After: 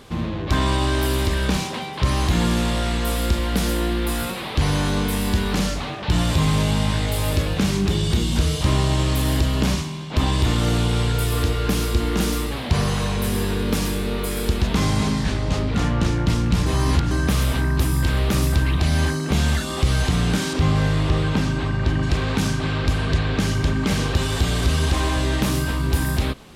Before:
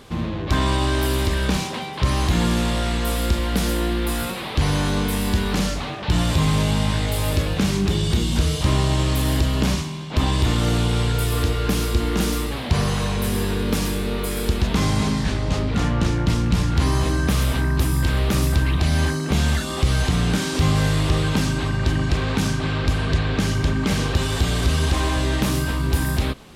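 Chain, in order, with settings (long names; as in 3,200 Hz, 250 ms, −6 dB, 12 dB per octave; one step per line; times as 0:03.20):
0:16.66–0:17.11: reverse
0:20.53–0:22.03: low-pass filter 3,200 Hz 6 dB per octave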